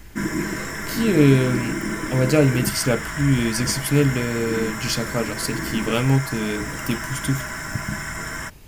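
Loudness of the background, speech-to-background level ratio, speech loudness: −28.0 LKFS, 6.0 dB, −22.0 LKFS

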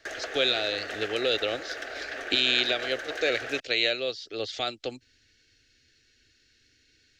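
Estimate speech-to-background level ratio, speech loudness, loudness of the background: 8.5 dB, −27.5 LKFS, −36.0 LKFS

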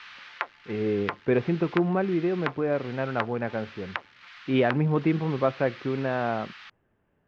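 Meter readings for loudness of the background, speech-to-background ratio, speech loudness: −40.0 LKFS, 13.0 dB, −27.0 LKFS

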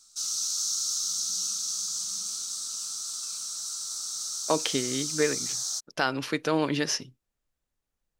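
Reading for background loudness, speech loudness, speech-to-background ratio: −29.5 LKFS, −29.0 LKFS, 0.5 dB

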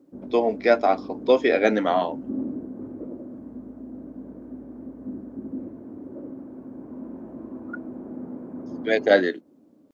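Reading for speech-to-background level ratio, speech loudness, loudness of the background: 15.0 dB, −22.0 LKFS, −37.0 LKFS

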